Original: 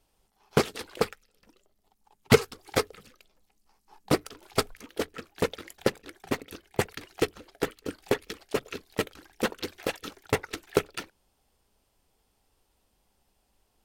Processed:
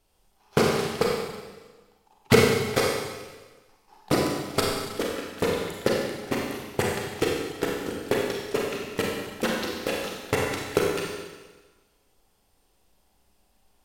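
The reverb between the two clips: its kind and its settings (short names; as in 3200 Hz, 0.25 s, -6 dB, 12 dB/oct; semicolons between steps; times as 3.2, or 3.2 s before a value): Schroeder reverb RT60 1.3 s, combs from 31 ms, DRR -2.5 dB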